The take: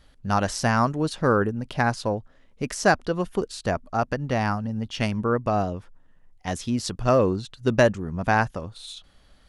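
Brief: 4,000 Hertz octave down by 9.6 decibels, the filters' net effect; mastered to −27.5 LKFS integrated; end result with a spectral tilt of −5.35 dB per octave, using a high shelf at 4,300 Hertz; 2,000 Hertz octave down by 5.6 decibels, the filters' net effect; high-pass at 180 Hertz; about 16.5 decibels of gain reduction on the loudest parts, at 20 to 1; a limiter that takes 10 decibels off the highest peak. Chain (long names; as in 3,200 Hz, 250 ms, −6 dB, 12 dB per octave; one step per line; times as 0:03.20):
high-pass filter 180 Hz
parametric band 2,000 Hz −5.5 dB
parametric band 4,000 Hz −8 dB
high-shelf EQ 4,300 Hz −5.5 dB
downward compressor 20 to 1, threshold −31 dBFS
level +13 dB
brickwall limiter −15 dBFS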